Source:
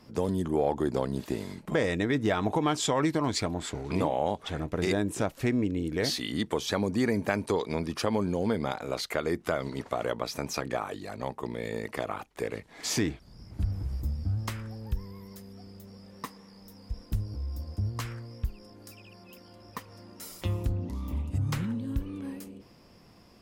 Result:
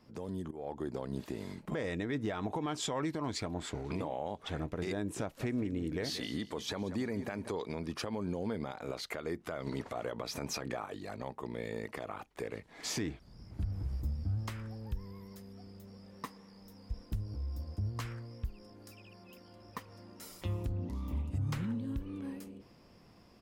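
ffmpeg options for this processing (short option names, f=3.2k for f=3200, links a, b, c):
-filter_complex "[0:a]asplit=3[a][b][c];[a]afade=t=out:st=5.39:d=0.02[d];[b]aecho=1:1:184|368|552:0.168|0.0604|0.0218,afade=t=in:st=5.39:d=0.02,afade=t=out:st=7.48:d=0.02[e];[c]afade=t=in:st=7.48:d=0.02[f];[d][e][f]amix=inputs=3:normalize=0,asettb=1/sr,asplit=3[g][h][i];[g]atrim=end=9.674[j];[h]atrim=start=9.67:end=10.86,asetpts=PTS-STARTPTS,afade=t=in:d=0.004:c=qsin,afade=t=out:st=1.186:d=0.004:c=qsin,acontrast=69[k];[i]atrim=start=10.856[l];[j][k]acrossfade=d=0.004:c1=hsin:c2=qsin[m];[m][l]acrossfade=d=0.004:c1=qsin:c2=hsin,asplit=2[n][o];[n]atrim=end=0.51,asetpts=PTS-STARTPTS,afade=t=out:st=0.506:d=0.004:c=hsin:silence=0.11885[p];[o]atrim=start=0.51,asetpts=PTS-STARTPTS,afade=t=in:d=0.66:silence=0.11885[q];[p][q]concat=n=2:v=0:a=1,highshelf=f=5.2k:g=-4.5,alimiter=limit=-22.5dB:level=0:latency=1:release=151,dynaudnorm=f=220:g=5:m=4dB,volume=-7.5dB"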